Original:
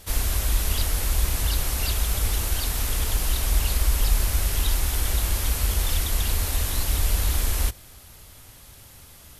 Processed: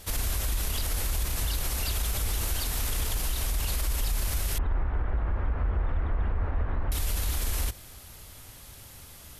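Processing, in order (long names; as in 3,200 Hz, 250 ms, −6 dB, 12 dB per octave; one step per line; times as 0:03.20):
0:04.58–0:06.92: low-pass filter 1,600 Hz 24 dB per octave
brickwall limiter −20 dBFS, peak gain reduction 11 dB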